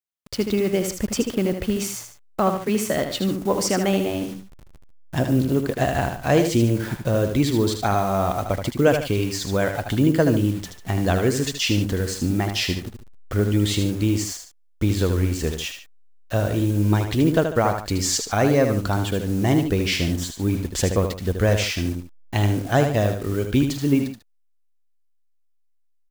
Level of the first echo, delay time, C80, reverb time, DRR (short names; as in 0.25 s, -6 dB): -7.0 dB, 77 ms, none, none, none